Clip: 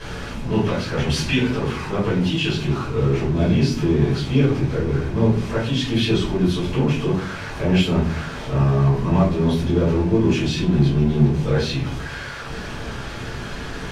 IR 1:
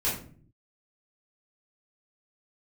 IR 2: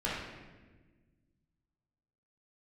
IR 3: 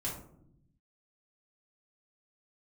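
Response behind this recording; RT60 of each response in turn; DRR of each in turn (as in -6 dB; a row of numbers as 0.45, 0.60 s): 1; 0.50, 1.3, 0.75 s; -10.0, -8.0, -6.0 dB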